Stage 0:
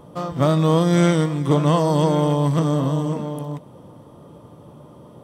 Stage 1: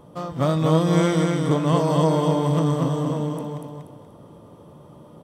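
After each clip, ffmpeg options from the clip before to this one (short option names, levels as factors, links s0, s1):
-af "aecho=1:1:240|480|720|960:0.668|0.221|0.0728|0.024,volume=0.668"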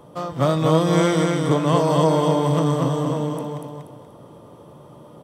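-filter_complex "[0:a]equalizer=f=130:w=6:g=5.5,acrossover=split=290[s0][s1];[s1]acontrast=35[s2];[s0][s2]amix=inputs=2:normalize=0,volume=0.794"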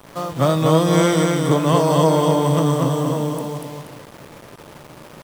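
-filter_complex "[0:a]highshelf=f=8700:g=8.5,acrossover=split=1200[s0][s1];[s0]acrusher=bits=6:mix=0:aa=0.000001[s2];[s2][s1]amix=inputs=2:normalize=0,volume=1.26"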